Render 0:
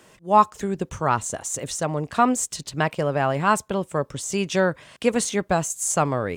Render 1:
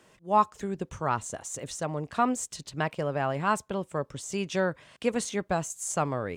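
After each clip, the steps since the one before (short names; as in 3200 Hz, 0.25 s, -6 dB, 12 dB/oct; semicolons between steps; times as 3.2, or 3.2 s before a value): high shelf 8700 Hz -5.5 dB; gain -6.5 dB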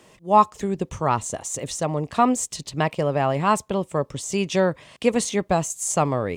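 bell 1500 Hz -8 dB 0.33 oct; gain +7.5 dB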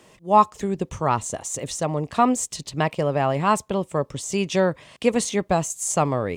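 nothing audible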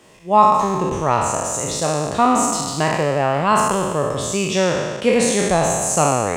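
spectral trails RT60 1.62 s; gain +1 dB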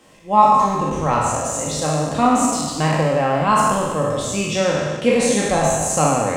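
shoebox room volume 790 m³, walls furnished, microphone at 2.1 m; gain -3 dB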